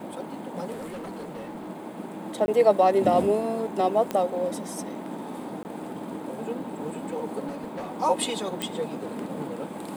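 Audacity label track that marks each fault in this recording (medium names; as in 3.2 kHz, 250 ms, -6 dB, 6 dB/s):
0.720000	1.700000	clipped -33 dBFS
2.460000	2.480000	dropout 20 ms
4.110000	4.110000	pop -14 dBFS
5.630000	5.650000	dropout 19 ms
7.470000	7.970000	clipped -30 dBFS
8.620000	8.620000	pop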